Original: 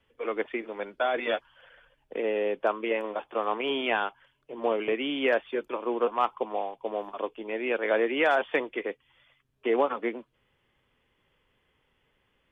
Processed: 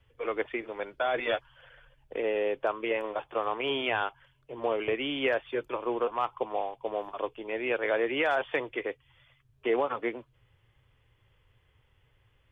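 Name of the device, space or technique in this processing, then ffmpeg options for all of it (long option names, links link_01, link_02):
car stereo with a boomy subwoofer: -af "lowshelf=frequency=150:width_type=q:width=3:gain=8.5,alimiter=limit=-17.5dB:level=0:latency=1:release=125"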